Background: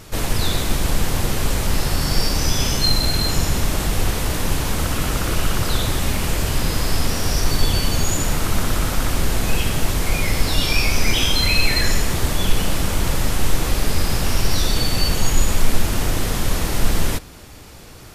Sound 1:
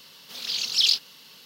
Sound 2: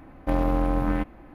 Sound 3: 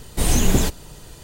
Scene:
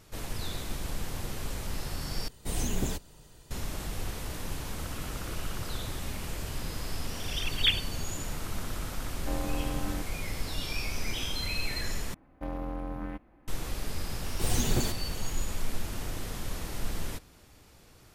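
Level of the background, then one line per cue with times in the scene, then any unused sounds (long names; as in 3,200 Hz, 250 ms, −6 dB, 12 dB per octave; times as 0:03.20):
background −15.5 dB
0:02.28: overwrite with 3 −13 dB
0:06.84: mix in 1 −7 dB + three sine waves on the formant tracks
0:08.99: mix in 2 −11 dB
0:12.14: overwrite with 2 −12.5 dB
0:14.22: mix in 3 −9.5 dB + lower of the sound and its delayed copy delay 8.3 ms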